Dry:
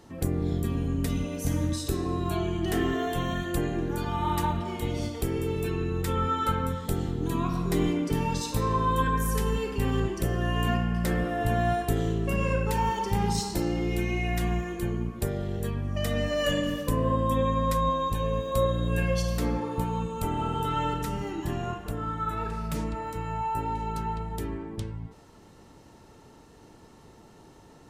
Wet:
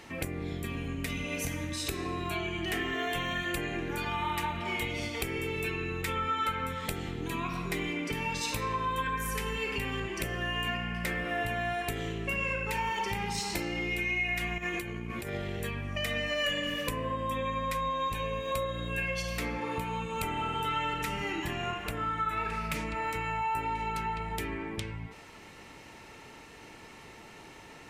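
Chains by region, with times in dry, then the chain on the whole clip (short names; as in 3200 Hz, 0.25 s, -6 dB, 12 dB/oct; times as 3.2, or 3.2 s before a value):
14.58–15.35 HPF 43 Hz + negative-ratio compressor -35 dBFS
whole clip: bell 2300 Hz +14 dB 0.79 oct; compressor, threshold -31 dBFS; low shelf 420 Hz -6.5 dB; gain +4 dB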